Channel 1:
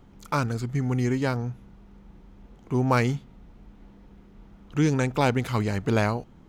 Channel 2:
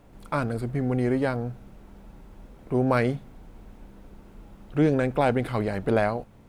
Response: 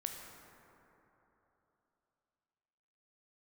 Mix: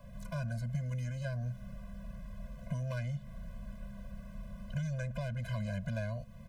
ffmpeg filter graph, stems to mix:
-filter_complex "[0:a]asoftclip=type=tanh:threshold=0.141,volume=0.75[s0];[1:a]alimiter=limit=0.0794:level=0:latency=1:release=167,adelay=1.4,volume=1.26[s1];[s0][s1]amix=inputs=2:normalize=0,acrossover=split=170|2500[s2][s3][s4];[s2]acompressor=threshold=0.0126:ratio=4[s5];[s3]acompressor=threshold=0.0112:ratio=4[s6];[s4]acompressor=threshold=0.00224:ratio=4[s7];[s5][s6][s7]amix=inputs=3:normalize=0,afftfilt=real='re*eq(mod(floor(b*sr/1024/240),2),0)':imag='im*eq(mod(floor(b*sr/1024/240),2),0)':win_size=1024:overlap=0.75"

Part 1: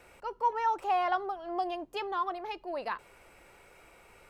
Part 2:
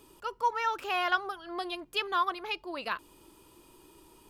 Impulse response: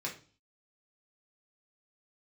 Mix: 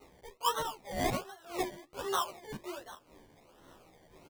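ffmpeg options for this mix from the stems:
-filter_complex "[0:a]bass=f=250:g=-15,treble=f=4000:g=11,acompressor=threshold=0.00447:ratio=2,volume=0.794[s0];[1:a]aeval=exprs='val(0)*pow(10,-27*(0.5-0.5*cos(2*PI*1.9*n/s))/20)':c=same,volume=-1,adelay=3.8,volume=1.06,asplit=2[s1][s2];[s2]volume=0.562[s3];[2:a]atrim=start_sample=2205[s4];[s3][s4]afir=irnorm=-1:irlink=0[s5];[s0][s1][s5]amix=inputs=3:normalize=0,acrusher=samples=26:mix=1:aa=0.000001:lfo=1:lforange=15.6:lforate=1.3,asplit=2[s6][s7];[s7]adelay=11.8,afreqshift=-1.1[s8];[s6][s8]amix=inputs=2:normalize=1"

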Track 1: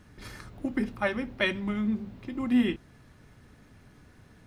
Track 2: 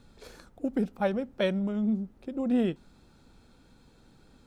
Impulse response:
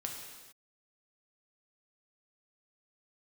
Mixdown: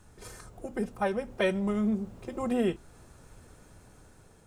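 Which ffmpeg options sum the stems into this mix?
-filter_complex "[0:a]equalizer=f=125:t=o:w=1:g=6,equalizer=f=500:t=o:w=1:g=3,equalizer=f=2000:t=o:w=1:g=-7,equalizer=f=8000:t=o:w=1:g=11,alimiter=limit=0.1:level=0:latency=1:release=400,volume=0.841[s0];[1:a]volume=0.891[s1];[s0][s1]amix=inputs=2:normalize=0,equalizer=f=125:t=o:w=1:g=-9,equalizer=f=250:t=o:w=1:g=-6,equalizer=f=4000:t=o:w=1:g=-7,dynaudnorm=f=430:g=5:m=1.58"

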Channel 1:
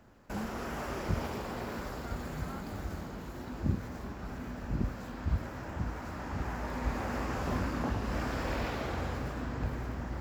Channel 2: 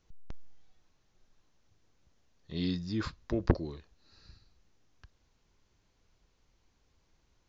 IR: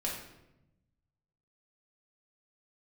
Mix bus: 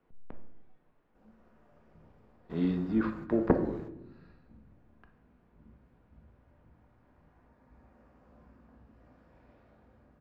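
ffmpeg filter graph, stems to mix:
-filter_complex "[0:a]adelay=850,volume=0.355,asplit=2[s0][s1];[s1]volume=0.0794[s2];[1:a]lowpass=4100,acrossover=split=180 2800:gain=0.158 1 0.178[s3][s4][s5];[s3][s4][s5]amix=inputs=3:normalize=0,volume=1.33,asplit=3[s6][s7][s8];[s7]volume=0.562[s9];[s8]apad=whole_len=487728[s10];[s0][s10]sidechaingate=range=0.0224:threshold=0.00158:ratio=16:detection=peak[s11];[2:a]atrim=start_sample=2205[s12];[s2][s9]amix=inputs=2:normalize=0[s13];[s13][s12]afir=irnorm=-1:irlink=0[s14];[s11][s6][s14]amix=inputs=3:normalize=0,lowpass=f=1300:p=1"

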